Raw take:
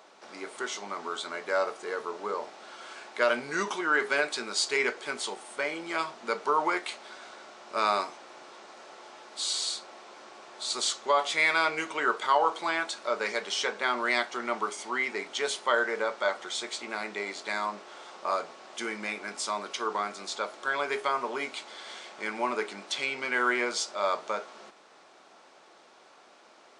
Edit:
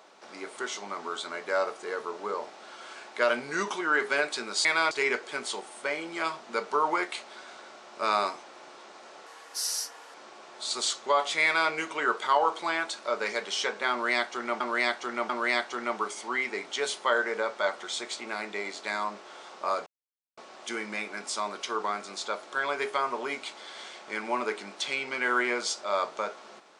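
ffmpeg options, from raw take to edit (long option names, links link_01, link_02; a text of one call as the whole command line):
ffmpeg -i in.wav -filter_complex "[0:a]asplit=8[link_01][link_02][link_03][link_04][link_05][link_06][link_07][link_08];[link_01]atrim=end=4.652[link_09];[link_02]atrim=start=11.438:end=11.702[link_10];[link_03]atrim=start=4.648:end=9.004[link_11];[link_04]atrim=start=9:end=10.14,asetpts=PTS-STARTPTS,asetrate=56889,aresample=44100,atrim=end_sample=38972,asetpts=PTS-STARTPTS[link_12];[link_05]atrim=start=10.136:end=14.602[link_13];[link_06]atrim=start=13.908:end=14.602[link_14];[link_07]atrim=start=13.908:end=18.48,asetpts=PTS-STARTPTS,afade=type=out:start_time=4.568:duration=0.004:curve=hsin,apad=pad_dur=0.51[link_15];[link_08]atrim=start=18.48,asetpts=PTS-STARTPTS,afade=type=in:duration=0.004:curve=hsin[link_16];[link_09][link_10]acrossfade=duration=0.004:curve1=hsin:curve2=hsin[link_17];[link_17][link_11]acrossfade=duration=0.004:curve1=hsin:curve2=hsin[link_18];[link_18][link_12]acrossfade=duration=0.004:curve1=hsin:curve2=hsin[link_19];[link_19][link_13]acrossfade=duration=0.004:curve1=hsin:curve2=hsin[link_20];[link_20][link_14]acrossfade=duration=0.004:curve1=hsin:curve2=hsin[link_21];[link_15][link_16]concat=n=2:v=0:a=1[link_22];[link_21][link_22]acrossfade=duration=0.004:curve1=hsin:curve2=hsin" out.wav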